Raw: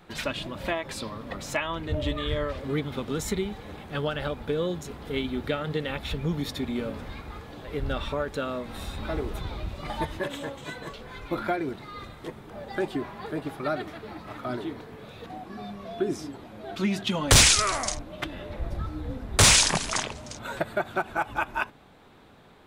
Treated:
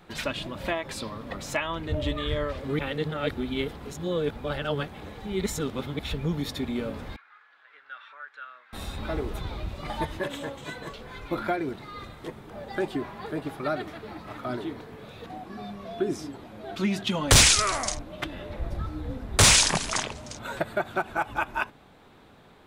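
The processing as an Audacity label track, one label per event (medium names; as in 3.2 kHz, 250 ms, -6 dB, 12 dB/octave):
2.790000	5.990000	reverse
7.160000	8.730000	ladder band-pass 1.7 kHz, resonance 60%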